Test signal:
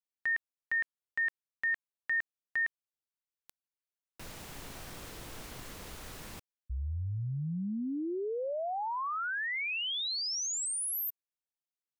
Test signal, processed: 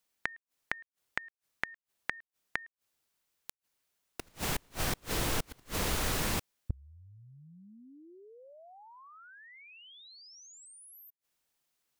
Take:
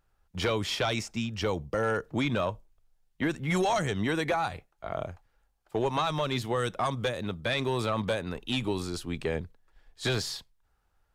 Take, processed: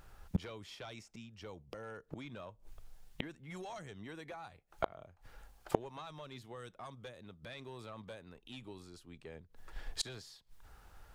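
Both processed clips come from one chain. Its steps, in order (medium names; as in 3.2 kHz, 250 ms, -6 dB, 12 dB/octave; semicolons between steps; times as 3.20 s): inverted gate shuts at -34 dBFS, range -34 dB; trim +14.5 dB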